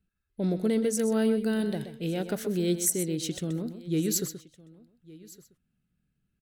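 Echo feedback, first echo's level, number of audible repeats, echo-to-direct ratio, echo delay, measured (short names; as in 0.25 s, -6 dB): no steady repeat, -10.5 dB, 3, -10.0 dB, 0.127 s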